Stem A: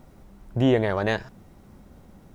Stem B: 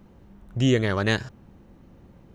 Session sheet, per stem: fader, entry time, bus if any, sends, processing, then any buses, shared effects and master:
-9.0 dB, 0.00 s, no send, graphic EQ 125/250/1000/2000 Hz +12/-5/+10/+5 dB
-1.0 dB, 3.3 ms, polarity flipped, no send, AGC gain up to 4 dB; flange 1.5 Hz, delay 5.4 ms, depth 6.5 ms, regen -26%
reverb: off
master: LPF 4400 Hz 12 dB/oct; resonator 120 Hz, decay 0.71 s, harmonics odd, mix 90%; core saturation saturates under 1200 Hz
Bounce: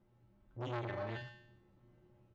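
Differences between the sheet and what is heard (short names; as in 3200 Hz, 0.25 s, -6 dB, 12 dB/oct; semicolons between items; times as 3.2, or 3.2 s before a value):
stem A: missing graphic EQ 125/250/1000/2000 Hz +12/-5/+10/+5 dB; stem B: polarity flipped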